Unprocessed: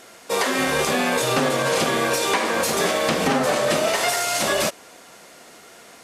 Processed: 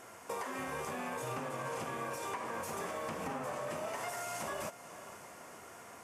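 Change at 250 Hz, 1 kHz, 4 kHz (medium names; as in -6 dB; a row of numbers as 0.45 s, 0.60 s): -19.5 dB, -15.5 dB, -25.5 dB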